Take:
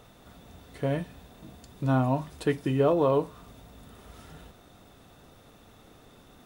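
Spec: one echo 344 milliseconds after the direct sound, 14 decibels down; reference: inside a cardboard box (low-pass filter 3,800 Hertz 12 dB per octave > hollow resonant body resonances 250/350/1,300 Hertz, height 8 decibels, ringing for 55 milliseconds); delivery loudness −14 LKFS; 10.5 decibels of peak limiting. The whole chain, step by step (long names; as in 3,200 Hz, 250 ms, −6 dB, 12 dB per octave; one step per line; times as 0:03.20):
brickwall limiter −23 dBFS
low-pass filter 3,800 Hz 12 dB per octave
single-tap delay 344 ms −14 dB
hollow resonant body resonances 250/350/1,300 Hz, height 8 dB, ringing for 55 ms
level +17.5 dB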